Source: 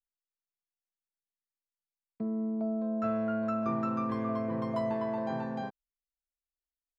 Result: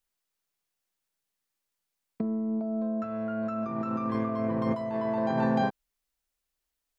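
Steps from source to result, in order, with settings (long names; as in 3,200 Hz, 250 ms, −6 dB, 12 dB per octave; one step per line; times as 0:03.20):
compressor whose output falls as the input rises −35 dBFS, ratio −0.5
level +7 dB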